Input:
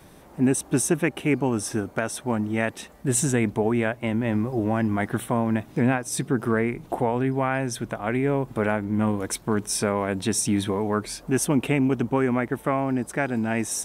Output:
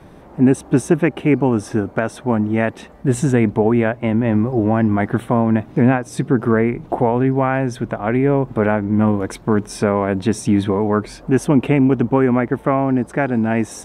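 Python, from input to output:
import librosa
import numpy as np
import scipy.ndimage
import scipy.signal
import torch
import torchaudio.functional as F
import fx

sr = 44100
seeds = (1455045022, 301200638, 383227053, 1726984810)

y = fx.lowpass(x, sr, hz=1400.0, slope=6)
y = F.gain(torch.from_numpy(y), 8.0).numpy()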